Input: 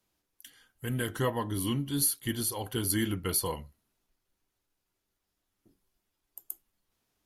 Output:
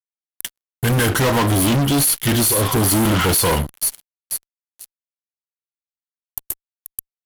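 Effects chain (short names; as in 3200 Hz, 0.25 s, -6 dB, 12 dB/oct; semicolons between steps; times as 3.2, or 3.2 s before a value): thin delay 0.484 s, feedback 44%, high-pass 5200 Hz, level -12 dB; spectral repair 2.56–3.25, 710–4000 Hz both; fuzz box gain 44 dB, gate -49 dBFS; gain -1.5 dB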